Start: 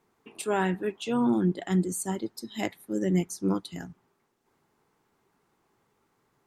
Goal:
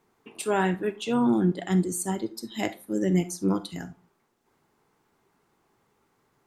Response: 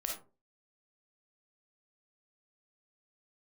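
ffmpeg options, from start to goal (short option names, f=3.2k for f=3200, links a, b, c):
-filter_complex "[0:a]asplit=2[a][b];[1:a]atrim=start_sample=2205,asetrate=48510,aresample=44100[c];[b][c]afir=irnorm=-1:irlink=0,volume=-9dB[d];[a][d]amix=inputs=2:normalize=0"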